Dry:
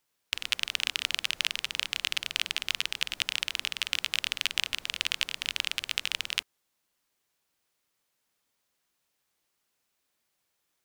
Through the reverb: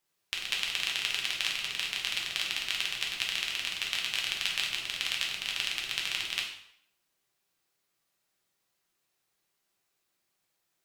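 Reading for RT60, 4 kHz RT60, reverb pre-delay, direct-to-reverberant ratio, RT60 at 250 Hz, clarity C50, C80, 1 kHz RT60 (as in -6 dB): 0.70 s, 0.60 s, 4 ms, -2.0 dB, 0.65 s, 5.5 dB, 8.0 dB, 0.70 s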